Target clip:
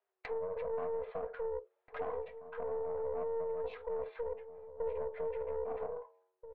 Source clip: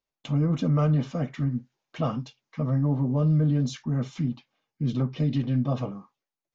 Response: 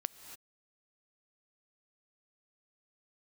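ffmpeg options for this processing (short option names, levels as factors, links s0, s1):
-filter_complex "[0:a]alimiter=limit=0.0668:level=0:latency=1:release=54,asetrate=24750,aresample=44100,atempo=1.7818,bandreject=f=91.73:t=h:w=4,bandreject=f=183.46:t=h:w=4,bandreject=f=275.19:t=h:w=4,bandreject=f=366.92:t=h:w=4,bandreject=f=458.65:t=h:w=4,bandreject=f=550.38:t=h:w=4,bandreject=f=642.11:t=h:w=4,bandreject=f=733.84:t=h:w=4,bandreject=f=825.57:t=h:w=4,bandreject=f=917.3:t=h:w=4,bandreject=f=1009.03:t=h:w=4,afreqshift=370,lowpass=1600,bandreject=f=530:w=12,acompressor=threshold=0.00316:ratio=2,aeval=exprs='(tanh(70.8*val(0)+0.6)-tanh(0.6))/70.8':c=same,asplit=2[s0][s1];[s1]adelay=1633,volume=0.251,highshelf=f=4000:g=-36.7[s2];[s0][s2]amix=inputs=2:normalize=0,volume=2.51"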